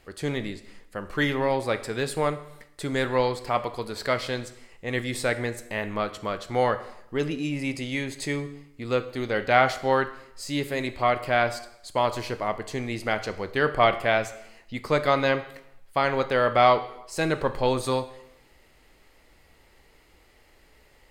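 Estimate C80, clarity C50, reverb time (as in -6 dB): 16.0 dB, 13.5 dB, 0.80 s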